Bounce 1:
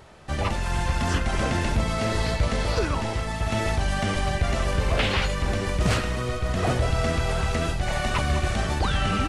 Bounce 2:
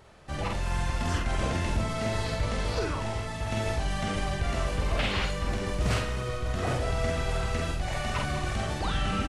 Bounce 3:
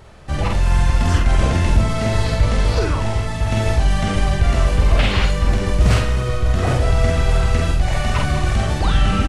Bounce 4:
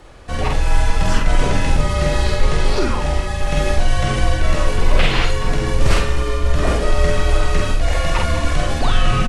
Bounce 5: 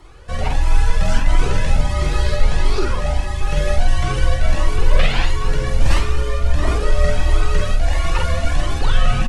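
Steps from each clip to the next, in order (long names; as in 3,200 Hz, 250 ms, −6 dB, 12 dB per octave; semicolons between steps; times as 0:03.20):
double-tracking delay 47 ms −3 dB; level −6.5 dB
low-shelf EQ 130 Hz +8 dB; level +8 dB
frequency shifter −68 Hz; level +2 dB
flanger whose copies keep moving one way rising 1.5 Hz; level +1.5 dB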